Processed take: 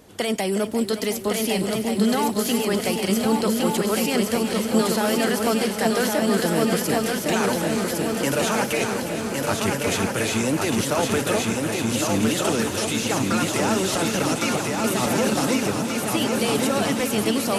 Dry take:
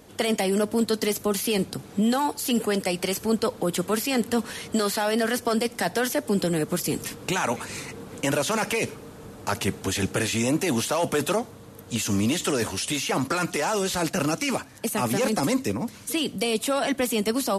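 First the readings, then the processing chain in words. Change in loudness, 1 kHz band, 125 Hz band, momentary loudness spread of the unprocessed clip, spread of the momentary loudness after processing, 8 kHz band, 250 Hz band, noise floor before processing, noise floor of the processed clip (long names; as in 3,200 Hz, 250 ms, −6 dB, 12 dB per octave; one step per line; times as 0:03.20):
+3.5 dB, +3.0 dB, +3.0 dB, 6 LU, 3 LU, +3.5 dB, +4.0 dB, −45 dBFS, −29 dBFS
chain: feedback echo with a long and a short gap by turns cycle 1,480 ms, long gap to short 3 to 1, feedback 53%, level −3.5 dB
feedback echo at a low word length 361 ms, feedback 80%, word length 9 bits, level −12 dB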